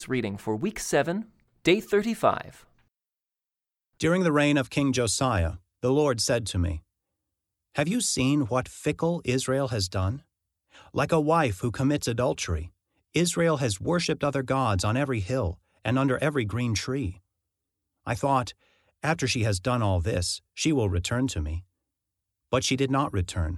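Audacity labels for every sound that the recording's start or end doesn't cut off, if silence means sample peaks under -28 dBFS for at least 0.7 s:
4.010000	6.760000	sound
7.770000	10.160000	sound
10.970000	17.100000	sound
18.070000	21.570000	sound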